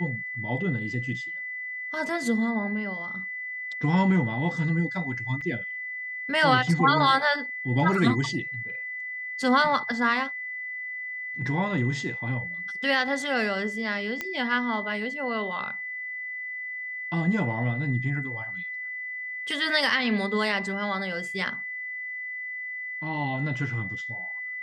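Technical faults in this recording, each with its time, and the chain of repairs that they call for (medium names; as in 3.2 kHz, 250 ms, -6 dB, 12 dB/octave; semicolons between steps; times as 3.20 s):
whine 2 kHz -32 dBFS
5.41–5.42 s: dropout 5 ms
14.21 s: pop -15 dBFS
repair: de-click; band-stop 2 kHz, Q 30; interpolate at 5.41 s, 5 ms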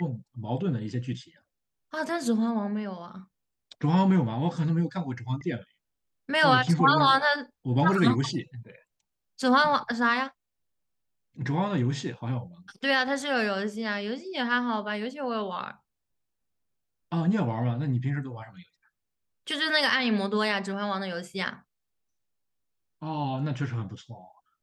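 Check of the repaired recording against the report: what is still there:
nothing left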